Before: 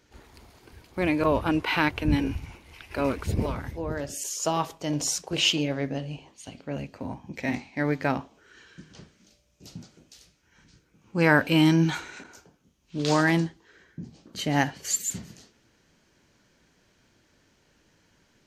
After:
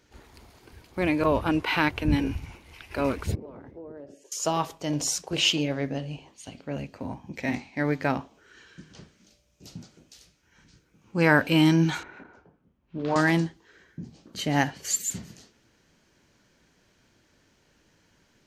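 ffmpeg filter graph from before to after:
-filter_complex "[0:a]asettb=1/sr,asplit=3[s0][s1][s2];[s0]atrim=end=3.354[s3];[s1]atrim=start=3.35:end=4.32,asetpts=PTS-STARTPTS,afade=t=in:d=0.004:c=qsin,afade=t=out:st=0.966:d=0.004:c=qsin,bandpass=f=400:t=q:w=1.4,acompressor=threshold=0.0112:ratio=4:attack=3.2:release=140:knee=1:detection=peak[s4];[s2]atrim=start=4.316[s5];[s3][s4]acrossfade=d=0.004:c1=hsin:c2=qsin[s6];[s6][s5]acrossfade=d=0.004:c1=qsin:c2=hsin,asettb=1/sr,asplit=3[s7][s8][s9];[s7]atrim=end=12.034[s10];[s8]atrim=start=12.03:end=13.16,asetpts=PTS-STARTPTS,afade=t=in:d=0.004:c=qsin,afade=t=out:st=1.126:d=0.004:c=qsin,lowpass=1500,bandreject=f=50:t=h:w=6,bandreject=f=100:t=h:w=6,bandreject=f=150:t=h:w=6,bandreject=f=200:t=h:w=6,bandreject=f=250:t=h:w=6,bandreject=f=300:t=h:w=6,bandreject=f=350:t=h:w=6,bandreject=f=400:t=h:w=6,bandreject=f=450:t=h:w=6,bandreject=f=500:t=h:w=6[s11];[s9]atrim=start=13.156[s12];[s10][s11]acrossfade=d=0.004:c1=hsin:c2=qsin[s13];[s13][s12]acrossfade=d=0.004:c1=qsin:c2=hsin"

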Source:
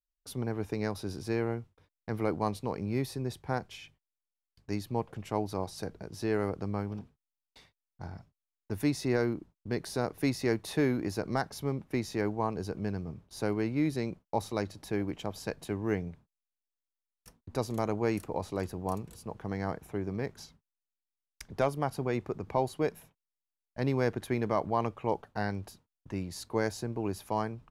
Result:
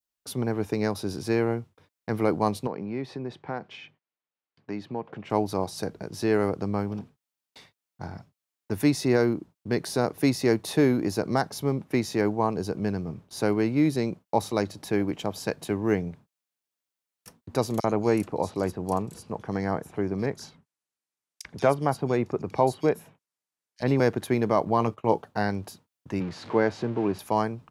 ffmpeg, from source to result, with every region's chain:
-filter_complex "[0:a]asettb=1/sr,asplit=3[s0][s1][s2];[s0]atrim=end=2.674[s3];[s1]atrim=start=2.67:end=5.3,asetpts=PTS-STARTPTS,afade=t=in:d=0.004:c=qsin,afade=t=out:st=2.626:d=0.004:c=qsin,acompressor=threshold=0.0158:ratio=2:attack=3.2:release=140:knee=1:detection=peak,highpass=150,lowpass=2800[s4];[s2]atrim=start=5.296[s5];[s3][s4]acrossfade=d=0.004:c1=hsin:c2=qsin[s6];[s6][s5]acrossfade=d=0.004:c1=qsin:c2=hsin,asettb=1/sr,asplit=3[s7][s8][s9];[s7]atrim=end=17.804[s10];[s8]atrim=start=17.8:end=24,asetpts=PTS-STARTPTS,afade=t=in:d=0.004:c=qsin,afade=t=out:st=6.196:d=0.004:c=qsin,lowpass=11000,acrossover=split=3400[s11][s12];[s11]adelay=40[s13];[s13][s12]amix=inputs=2:normalize=0,atrim=end_sample=273420[s14];[s9]atrim=start=23.996[s15];[s10][s14]acrossfade=d=0.004:c1=hsin:c2=qsin[s16];[s16][s15]acrossfade=d=0.004:c1=qsin:c2=hsin,asettb=1/sr,asplit=3[s17][s18][s19];[s17]atrim=end=24.654[s20];[s18]atrim=start=24.65:end=25.2,asetpts=PTS-STARTPTS,afade=t=in:d=0.004:c=qsin,afade=t=out:st=0.546:d=0.004:c=qsin,agate=range=0.112:threshold=0.00447:ratio=16:release=100:detection=peak,asplit=2[s21][s22];[s22]adelay=18,volume=0.316[s23];[s21][s23]amix=inputs=2:normalize=0,atrim=end_sample=24255[s24];[s19]atrim=start=25.196[s25];[s20][s24]acrossfade=d=0.004:c1=hsin:c2=qsin[s26];[s26][s25]acrossfade=d=0.004:c1=qsin:c2=hsin,asettb=1/sr,asplit=3[s27][s28][s29];[s27]atrim=end=26.204[s30];[s28]atrim=start=26.2:end=27.19,asetpts=PTS-STARTPTS,afade=t=in:d=0.004:c=qsin,afade=t=out:st=0.986:d=0.004:c=qsin,aeval=exprs='val(0)+0.5*0.00944*sgn(val(0))':c=same,highpass=110,lowpass=2600[s31];[s29]atrim=start=27.186[s32];[s30][s31]acrossfade=d=0.004:c1=hsin:c2=qsin[s33];[s33][s32]acrossfade=d=0.004:c1=qsin:c2=hsin,highpass=110,adynamicequalizer=threshold=0.00355:dfrequency=1900:dqfactor=1:tfrequency=1900:tqfactor=1:attack=5:release=100:ratio=0.375:range=2:mode=cutabove:tftype=bell,volume=2.24"

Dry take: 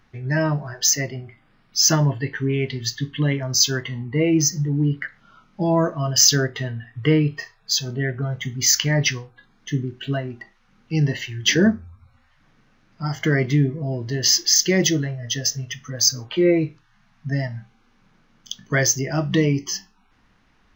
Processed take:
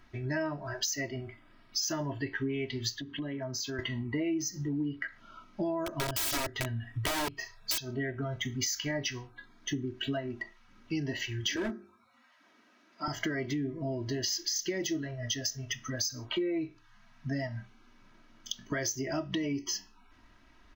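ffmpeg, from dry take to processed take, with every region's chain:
-filter_complex "[0:a]asettb=1/sr,asplit=3[s0][s1][s2];[s0]atrim=end=3.004[s3];[s1]atrim=start=3:end=3.79,asetpts=PTS-STARTPTS,afade=t=in:d=0.004:c=qsin,afade=t=out:st=0.786:d=0.004:c=qsin,highpass=f=110:w=0.5412,highpass=f=110:w=1.3066,highshelf=f=3000:g=-12,acompressor=threshold=0.0251:ratio=4:attack=3.2:release=140:knee=1:detection=peak[s4];[s2]atrim=start=3.786[s5];[s3][s4]acrossfade=d=0.004:c1=hsin:c2=qsin[s6];[s6][s5]acrossfade=d=0.004:c1=qsin:c2=hsin,asettb=1/sr,asplit=3[s7][s8][s9];[s7]atrim=end=5.864[s10];[s8]atrim=start=5.86:end=7.78,asetpts=PTS-STARTPTS,afade=t=in:d=0.004:c=qsin,afade=t=out:st=1.916:d=0.004:c=qsin,bass=f=250:g=6,treble=f=4000:g=5,aeval=exprs='(mod(4.73*val(0)+1,2)-1)/4.73':c=same[s11];[s9]atrim=start=7.776[s12];[s10][s11]acrossfade=d=0.004:c1=hsin:c2=qsin[s13];[s13][s12]acrossfade=d=0.004:c1=qsin:c2=hsin,asettb=1/sr,asplit=3[s14][s15][s16];[s14]atrim=end=11.564[s17];[s15]atrim=start=11.56:end=13.08,asetpts=PTS-STARTPTS,afade=t=in:d=0.004:c=qsin,afade=t=out:st=1.516:d=0.004:c=qsin,highpass=f=230:w=0.5412,highpass=f=230:w=1.3066,bandreject=f=50:t=h:w=6,bandreject=f=100:t=h:w=6,bandreject=f=150:t=h:w=6,bandreject=f=200:t=h:w=6,bandreject=f=250:t=h:w=6,bandreject=f=300:t=h:w=6,bandreject=f=350:t=h:w=6,bandreject=f=400:t=h:w=6,asoftclip=type=hard:threshold=0.119[s18];[s16]atrim=start=13.076[s19];[s17][s18]acrossfade=d=0.004:c1=hsin:c2=qsin[s20];[s20][s19]acrossfade=d=0.004:c1=qsin:c2=hsin,alimiter=limit=0.266:level=0:latency=1:release=75,aecho=1:1:3.1:0.67,acompressor=threshold=0.0355:ratio=5,volume=0.794"

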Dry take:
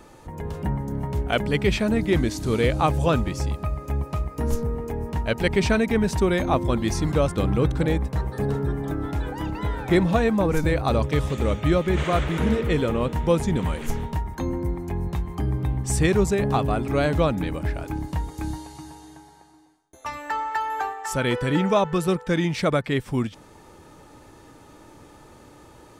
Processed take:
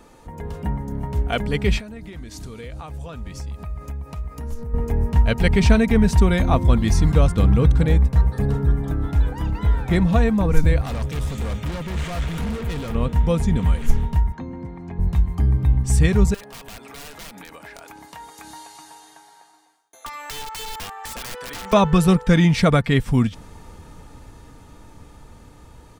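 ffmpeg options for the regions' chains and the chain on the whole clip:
-filter_complex "[0:a]asettb=1/sr,asplit=3[s0][s1][s2];[s0]atrim=end=1.794[s3];[s1]atrim=start=1.79:end=4.74,asetpts=PTS-STARTPTS,afade=t=in:d=0.004:c=qsin,afade=t=out:st=2.946:d=0.004:c=qsin,acompressor=threshold=0.0282:ratio=8:attack=3.2:release=140:knee=1:detection=peak,lowshelf=f=430:g=-4.5[s4];[s2]atrim=start=4.736[s5];[s3][s4]acrossfade=d=0.004:c1=hsin:c2=qsin[s6];[s6][s5]acrossfade=d=0.004:c1=qsin:c2=hsin,asettb=1/sr,asplit=3[s7][s8][s9];[s7]atrim=end=10.814[s10];[s8]atrim=start=10.81:end=12.95,asetpts=PTS-STARTPTS,afade=t=in:d=0.004:c=qsin,afade=t=out:st=2.136:d=0.004:c=qsin,highpass=f=70:p=1,highshelf=f=4500:g=8,asoftclip=type=hard:threshold=0.0447[s11];[s9]atrim=start=12.946[s12];[s10][s11]acrossfade=d=0.004:c1=hsin:c2=qsin[s13];[s13][s12]acrossfade=d=0.004:c1=qsin:c2=hsin,asettb=1/sr,asplit=3[s14][s15][s16];[s14]atrim=end=14.324[s17];[s15]atrim=start=14.32:end=14.99,asetpts=PTS-STARTPTS,afade=t=in:d=0.004:c=qsin,afade=t=out:st=0.666:d=0.004:c=qsin,acrossover=split=420|1900[s18][s19][s20];[s18]acompressor=threshold=0.0398:ratio=4[s21];[s19]acompressor=threshold=0.0126:ratio=4[s22];[s20]acompressor=threshold=0.00251:ratio=4[s23];[s21][s22][s23]amix=inputs=3:normalize=0,highpass=150,lowpass=4400[s24];[s16]atrim=start=14.986[s25];[s17][s24]acrossfade=d=0.004:c1=hsin:c2=qsin[s26];[s26][s25]acrossfade=d=0.004:c1=qsin:c2=hsin,asettb=1/sr,asplit=3[s27][s28][s29];[s27]atrim=end=16.344[s30];[s28]atrim=start=16.34:end=21.73,asetpts=PTS-STARTPTS,afade=t=in:d=0.004:c=qsin,afade=t=out:st=5.386:d=0.004:c=qsin,highpass=630,aeval=exprs='(mod(15.8*val(0)+1,2)-1)/15.8':c=same,acompressor=threshold=0.0158:ratio=10:attack=3.2:release=140:knee=1:detection=peak[s31];[s29]atrim=start=21.726[s32];[s30][s31]acrossfade=d=0.004:c1=hsin:c2=qsin[s33];[s33][s32]acrossfade=d=0.004:c1=qsin:c2=hsin,aecho=1:1:4.3:0.3,asubboost=boost=3.5:cutoff=160,dynaudnorm=f=370:g=17:m=3.76,volume=0.891"

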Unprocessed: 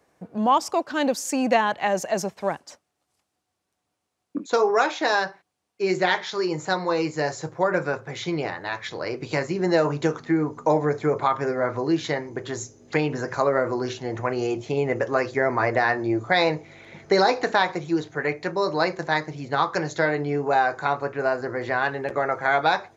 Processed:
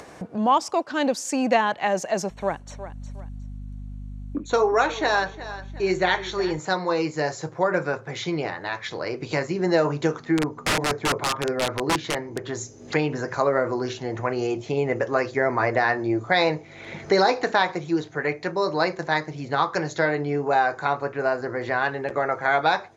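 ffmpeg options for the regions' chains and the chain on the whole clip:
-filter_complex "[0:a]asettb=1/sr,asplit=3[s0][s1][s2];[s0]atrim=end=2.304[s3];[s1]atrim=start=2.3:end=6.59,asetpts=PTS-STARTPTS,afade=t=in:d=0.004:c=qsin,afade=t=out:st=4.286:d=0.004:c=qsin,aeval=exprs='val(0)+0.00708*(sin(2*PI*50*n/s)+sin(2*PI*2*50*n/s)/2+sin(2*PI*3*50*n/s)/3+sin(2*PI*4*50*n/s)/4+sin(2*PI*5*50*n/s)/5)':c=same,asuperstop=centerf=5000:order=20:qfactor=6.9,aecho=1:1:361|722:0.158|0.0349,atrim=end_sample=189189[s4];[s2]atrim=start=6.586[s5];[s3][s4]acrossfade=d=0.004:c1=hsin:c2=qsin[s6];[s6][s5]acrossfade=d=0.004:c1=qsin:c2=hsin,asettb=1/sr,asplit=3[s7][s8][s9];[s7]atrim=end=10.374[s10];[s8]atrim=start=10.37:end=12.55,asetpts=PTS-STARTPTS,afade=t=in:d=0.004:c=qsin,afade=t=out:st=2.176:d=0.004:c=qsin,lowpass=f=3600:p=1,aeval=exprs='(mod(6.68*val(0)+1,2)-1)/6.68':c=same[s11];[s9]atrim=start=12.546[s12];[s10][s11]acrossfade=d=0.004:c1=hsin:c2=qsin[s13];[s13][s12]acrossfade=d=0.004:c1=qsin:c2=hsin,lowpass=9500,acompressor=mode=upward:threshold=0.0447:ratio=2.5"

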